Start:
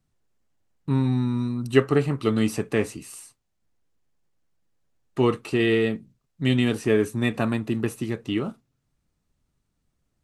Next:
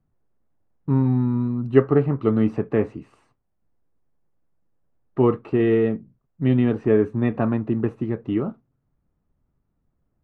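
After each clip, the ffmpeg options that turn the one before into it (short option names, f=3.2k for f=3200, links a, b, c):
-af "lowpass=1.2k,volume=3dB"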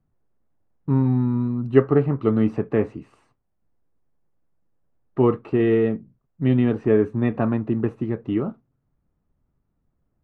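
-af anull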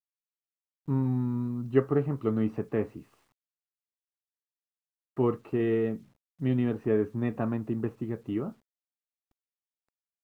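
-af "acrusher=bits=9:mix=0:aa=0.000001,volume=-8dB"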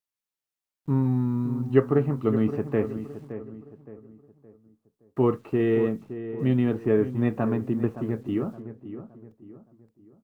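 -filter_complex "[0:a]asplit=2[a][b];[b]adelay=568,lowpass=f=1.7k:p=1,volume=-11.5dB,asplit=2[c][d];[d]adelay=568,lowpass=f=1.7k:p=1,volume=0.4,asplit=2[e][f];[f]adelay=568,lowpass=f=1.7k:p=1,volume=0.4,asplit=2[g][h];[h]adelay=568,lowpass=f=1.7k:p=1,volume=0.4[i];[a][c][e][g][i]amix=inputs=5:normalize=0,volume=4dB"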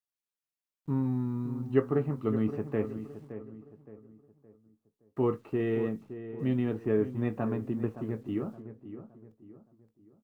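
-filter_complex "[0:a]asplit=2[a][b];[b]adelay=19,volume=-14dB[c];[a][c]amix=inputs=2:normalize=0,volume=-6dB"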